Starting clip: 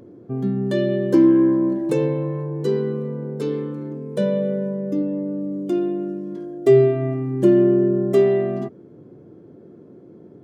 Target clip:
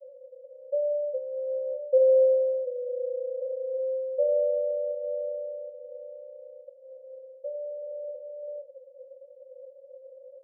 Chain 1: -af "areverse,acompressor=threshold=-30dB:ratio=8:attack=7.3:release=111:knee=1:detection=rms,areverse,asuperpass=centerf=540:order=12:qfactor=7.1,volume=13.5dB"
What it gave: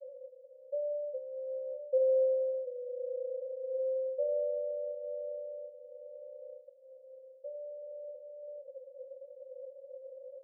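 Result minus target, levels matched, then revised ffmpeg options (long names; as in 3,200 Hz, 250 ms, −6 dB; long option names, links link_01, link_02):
downward compressor: peak gain reduction +8 dB
-af "areverse,acompressor=threshold=-21dB:ratio=8:attack=7.3:release=111:knee=1:detection=rms,areverse,asuperpass=centerf=540:order=12:qfactor=7.1,volume=13.5dB"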